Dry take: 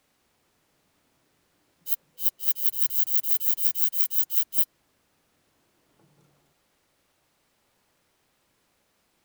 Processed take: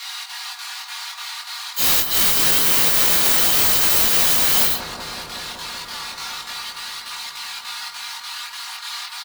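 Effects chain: phase randomisation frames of 200 ms; steep high-pass 800 Hz 72 dB/octave; peaking EQ 4.2 kHz +10 dB 0.61 oct; comb 4.2 ms, depth 88%; in parallel at -1 dB: compression, threshold -32 dBFS, peak gain reduction 14.5 dB; on the sum: square tremolo 3.4 Hz, depth 60%, duty 80%; overdrive pedal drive 35 dB, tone 6.7 kHz, clips at -6 dBFS; chorus voices 2, 0.28 Hz, delay 21 ms, depth 4 ms; on a send: bucket-brigade echo 189 ms, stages 2048, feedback 83%, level -8.5 dB; on the sum: trim +5 dB

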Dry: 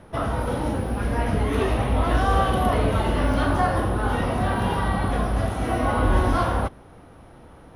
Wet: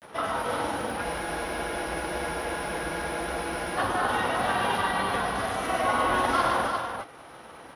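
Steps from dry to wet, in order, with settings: high-pass 1.1 kHz 6 dB/octave; upward compressor, threshold -43 dBFS; granulator, spray 19 ms, pitch spread up and down by 0 st; multi-tap echo 118/351 ms -5/-5.5 dB; spectral freeze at 1.04 s, 2.74 s; trim +4 dB

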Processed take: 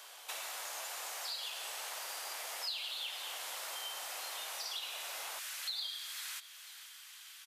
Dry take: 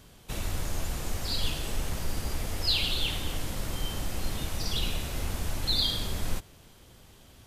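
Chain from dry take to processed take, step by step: high-pass 680 Hz 24 dB/octave, from 5.39 s 1.4 kHz; compression 4:1, threshold -48 dBFS, peak gain reduction 20.5 dB; feedback delay 496 ms, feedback 42%, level -15 dB; trim +6.5 dB

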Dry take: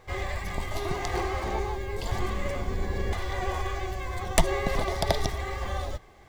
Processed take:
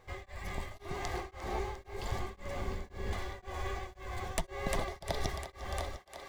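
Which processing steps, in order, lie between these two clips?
on a send: thinning echo 351 ms, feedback 80%, high-pass 220 Hz, level -9 dB; on the sum: tremolo of two beating tones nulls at 1.9 Hz; trim -6.5 dB

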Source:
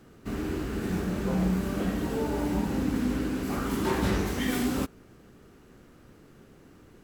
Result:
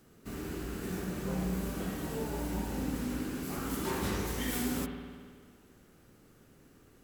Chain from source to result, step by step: treble shelf 5.6 kHz +11.5 dB; spring tank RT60 1.8 s, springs 53 ms, chirp 65 ms, DRR 4.5 dB; trim -8 dB

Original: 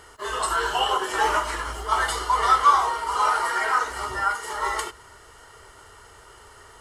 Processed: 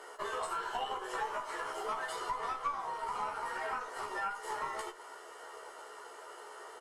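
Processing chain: high-pass 420 Hz 24 dB/octave; tilt shelf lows +6 dB; compression 8:1, threshold -36 dBFS, peak gain reduction 22.5 dB; valve stage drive 23 dB, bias 0.7; doubling 14 ms -3 dB; on a send: reverberation RT60 0.20 s, pre-delay 4 ms, DRR 15 dB; on the sum: trim +3 dB

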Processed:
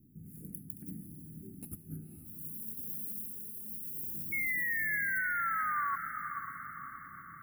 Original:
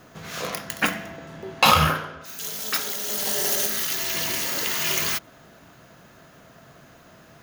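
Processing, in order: inverse Chebyshev band-stop 550–6300 Hz, stop band 40 dB; peaking EQ 14 kHz -3.5 dB 0.55 oct; compressor with a negative ratio -32 dBFS, ratio -0.5; painted sound fall, 4.32–5.96 s, 1.1–2.2 kHz -24 dBFS; feedback comb 170 Hz, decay 1.6 s, mix 60%; echo that smears into a reverb 526 ms, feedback 53%, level -7.5 dB; trim -2 dB

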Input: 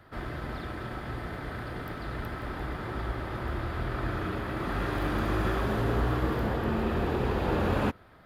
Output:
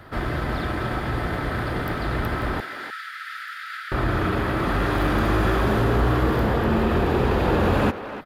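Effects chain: in parallel at +3 dB: peak limiter -26.5 dBFS, peak gain reduction 11.5 dB; 2.60–3.92 s: on the sum: rippled Chebyshev high-pass 1.3 kHz, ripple 3 dB; speakerphone echo 300 ms, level -10 dB; trim +3 dB

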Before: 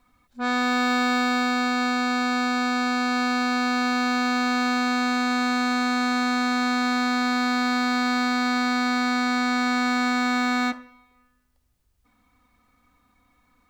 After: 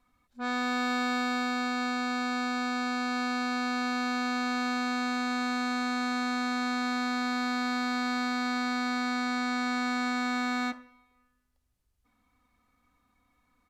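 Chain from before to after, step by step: resampled via 32 kHz; trim -7 dB

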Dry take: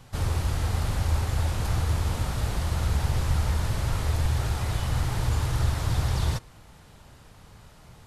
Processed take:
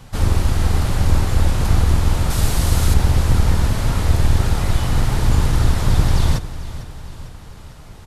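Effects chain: octave divider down 2 oct, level +2 dB; 2.30–2.94 s: treble shelf 4.6 kHz +10.5 dB; feedback delay 451 ms, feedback 56%, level -15 dB; trim +7 dB

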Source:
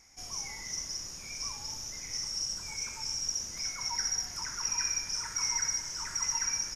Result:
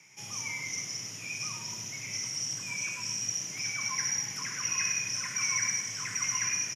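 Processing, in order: high-order bell 2.4 kHz +9 dB 1 oct; frequency shift +100 Hz; on a send: delay 101 ms -8 dB

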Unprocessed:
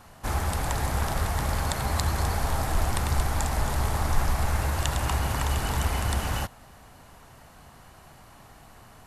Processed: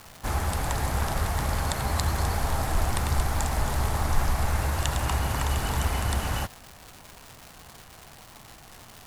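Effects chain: crackle 440 per s -34 dBFS

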